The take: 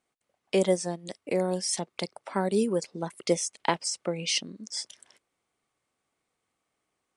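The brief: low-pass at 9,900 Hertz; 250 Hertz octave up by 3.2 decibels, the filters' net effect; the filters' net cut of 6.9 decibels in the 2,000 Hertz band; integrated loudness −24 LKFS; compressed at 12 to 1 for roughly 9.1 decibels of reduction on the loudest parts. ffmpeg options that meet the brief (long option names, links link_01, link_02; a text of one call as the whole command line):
ffmpeg -i in.wav -af "lowpass=9900,equalizer=frequency=250:width_type=o:gain=5,equalizer=frequency=2000:width_type=o:gain=-9,acompressor=threshold=-26dB:ratio=12,volume=9.5dB" out.wav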